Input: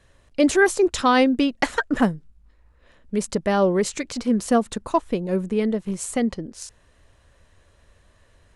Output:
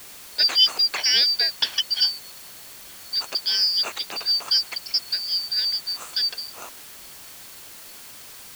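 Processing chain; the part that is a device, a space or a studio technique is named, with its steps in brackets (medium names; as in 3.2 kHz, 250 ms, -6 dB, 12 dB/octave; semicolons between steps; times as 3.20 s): split-band scrambled radio (four frequency bands reordered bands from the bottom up 4321; band-pass 350–3400 Hz; white noise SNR 17 dB); trim +4.5 dB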